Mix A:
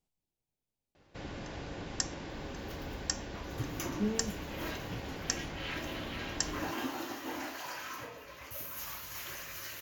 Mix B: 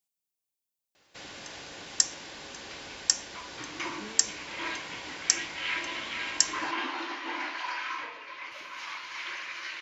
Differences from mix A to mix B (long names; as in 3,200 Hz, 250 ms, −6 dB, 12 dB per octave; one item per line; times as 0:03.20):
speech −5.5 dB
second sound: add loudspeaker in its box 160–4,200 Hz, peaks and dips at 330 Hz +9 dB, 1,000 Hz +10 dB, 1,500 Hz +4 dB, 2,200 Hz +8 dB
master: add spectral tilt +4 dB per octave